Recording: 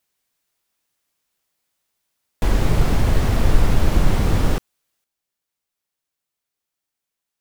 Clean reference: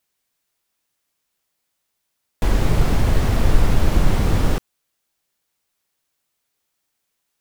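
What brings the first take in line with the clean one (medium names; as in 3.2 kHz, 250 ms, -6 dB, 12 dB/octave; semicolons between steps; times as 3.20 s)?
gain correction +8.5 dB, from 5.04 s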